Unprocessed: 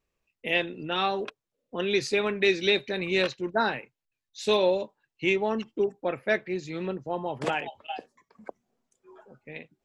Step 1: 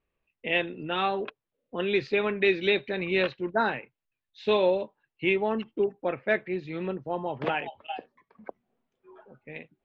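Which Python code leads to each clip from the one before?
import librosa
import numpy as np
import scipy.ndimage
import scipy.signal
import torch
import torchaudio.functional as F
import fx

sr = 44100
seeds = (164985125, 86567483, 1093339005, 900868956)

y = scipy.signal.sosfilt(scipy.signal.butter(4, 3400.0, 'lowpass', fs=sr, output='sos'), x)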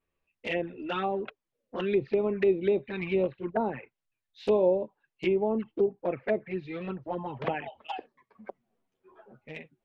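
y = fx.env_lowpass_down(x, sr, base_hz=880.0, full_db=-21.5)
y = fx.env_flanger(y, sr, rest_ms=11.3, full_db=-23.5)
y = y * 10.0 ** (1.5 / 20.0)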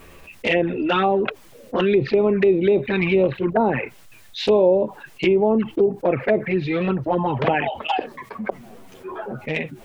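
y = fx.env_flatten(x, sr, amount_pct=50)
y = y * 10.0 ** (6.5 / 20.0)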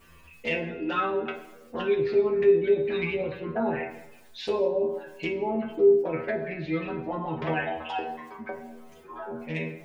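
y = fx.stiff_resonator(x, sr, f0_hz=78.0, decay_s=0.37, stiffness=0.002)
y = fx.rev_plate(y, sr, seeds[0], rt60_s=1.0, hf_ratio=0.65, predelay_ms=0, drr_db=4.5)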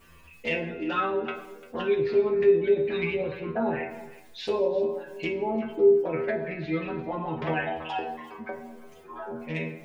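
y = x + 10.0 ** (-18.0 / 20.0) * np.pad(x, (int(346 * sr / 1000.0), 0))[:len(x)]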